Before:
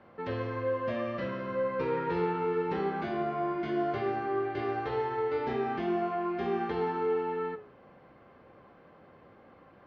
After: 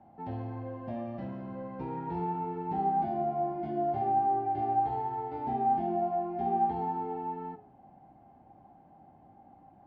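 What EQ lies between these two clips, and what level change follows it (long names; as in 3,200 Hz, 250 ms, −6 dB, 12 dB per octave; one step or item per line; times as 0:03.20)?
drawn EQ curve 300 Hz 0 dB, 500 Hz −16 dB, 790 Hz +10 dB, 1,100 Hz −16 dB
0.0 dB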